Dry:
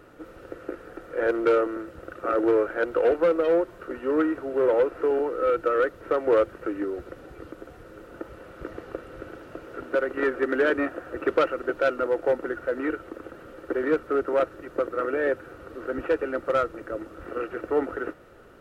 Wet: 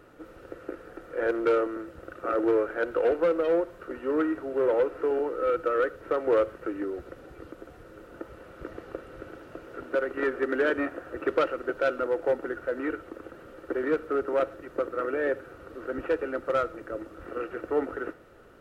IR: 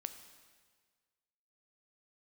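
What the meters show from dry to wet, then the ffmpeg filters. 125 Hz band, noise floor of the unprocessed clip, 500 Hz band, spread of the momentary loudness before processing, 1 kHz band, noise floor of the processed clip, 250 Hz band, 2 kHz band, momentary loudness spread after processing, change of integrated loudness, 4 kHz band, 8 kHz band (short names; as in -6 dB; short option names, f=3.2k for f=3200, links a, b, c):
-2.5 dB, -48 dBFS, -2.5 dB, 19 LU, -3.0 dB, -50 dBFS, -2.5 dB, -2.5 dB, 19 LU, -2.5 dB, -2.5 dB, n/a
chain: -filter_complex "[0:a]asplit=2[a][b];[1:a]atrim=start_sample=2205,atrim=end_sample=6174[c];[b][c]afir=irnorm=-1:irlink=0,volume=0dB[d];[a][d]amix=inputs=2:normalize=0,volume=-7.5dB"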